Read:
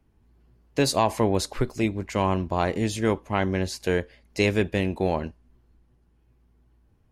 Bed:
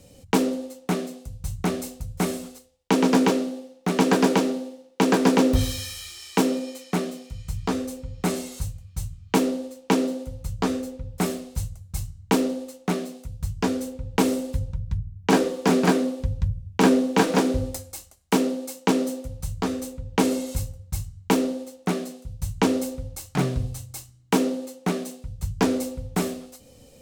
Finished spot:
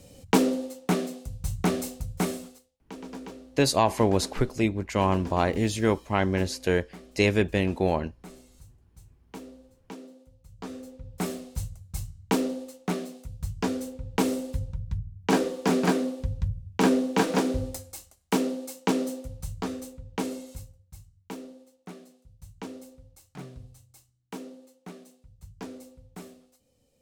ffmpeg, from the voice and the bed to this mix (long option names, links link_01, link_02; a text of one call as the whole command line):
ffmpeg -i stem1.wav -i stem2.wav -filter_complex "[0:a]adelay=2800,volume=0dB[link_01];[1:a]volume=17.5dB,afade=type=out:start_time=1.97:duration=0.9:silence=0.0841395,afade=type=in:start_time=10.48:duration=0.96:silence=0.133352,afade=type=out:start_time=19.24:duration=1.63:silence=0.188365[link_02];[link_01][link_02]amix=inputs=2:normalize=0" out.wav